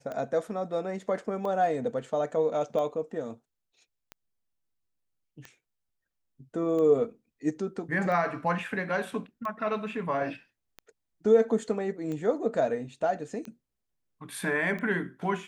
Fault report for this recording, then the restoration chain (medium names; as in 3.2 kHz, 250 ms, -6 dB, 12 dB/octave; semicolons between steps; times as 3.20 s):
tick 45 rpm -25 dBFS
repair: de-click